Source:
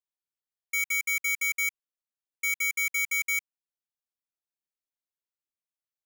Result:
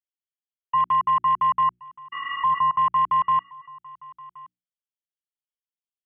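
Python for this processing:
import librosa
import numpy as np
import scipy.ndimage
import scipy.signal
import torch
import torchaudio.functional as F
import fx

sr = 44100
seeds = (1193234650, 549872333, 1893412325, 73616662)

y = fx.env_lowpass(x, sr, base_hz=390.0, full_db=-28.5)
y = fx.spec_repair(y, sr, seeds[0], start_s=2.15, length_s=0.42, low_hz=260.0, high_hz=2200.0, source='after')
y = fx.leveller(y, sr, passes=3)
y = fx.freq_invert(y, sr, carrier_hz=3300)
y = fx.hum_notches(y, sr, base_hz=60, count=6)
y = y + 10.0 ** (-22.0 / 20.0) * np.pad(y, (int(1073 * sr / 1000.0), 0))[:len(y)]
y = y * librosa.db_to_amplitude(6.0)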